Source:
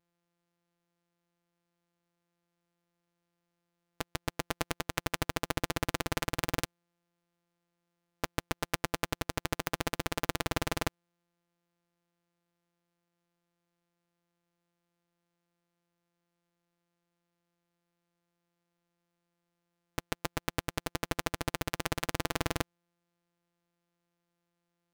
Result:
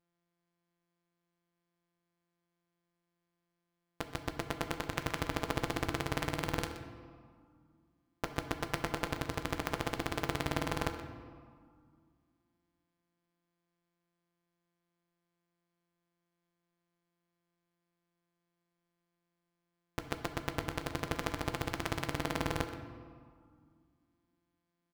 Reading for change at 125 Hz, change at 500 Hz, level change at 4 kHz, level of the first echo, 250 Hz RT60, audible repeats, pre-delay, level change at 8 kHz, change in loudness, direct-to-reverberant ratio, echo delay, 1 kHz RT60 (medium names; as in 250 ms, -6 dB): -0.5 dB, -0.5 dB, -3.5 dB, -14.0 dB, 2.9 s, 1, 9 ms, -6.0 dB, -2.0 dB, 6.0 dB, 125 ms, 2.1 s